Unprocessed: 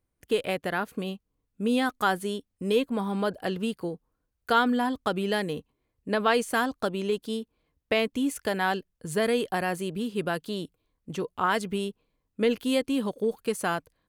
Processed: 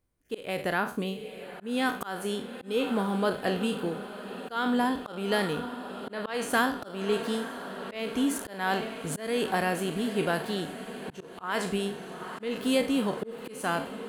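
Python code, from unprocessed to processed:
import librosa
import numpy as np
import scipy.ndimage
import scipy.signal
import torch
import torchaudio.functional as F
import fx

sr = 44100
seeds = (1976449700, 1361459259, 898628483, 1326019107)

y = fx.spec_trails(x, sr, decay_s=0.37)
y = fx.echo_diffused(y, sr, ms=903, feedback_pct=71, wet_db=-14)
y = fx.auto_swell(y, sr, attack_ms=275.0)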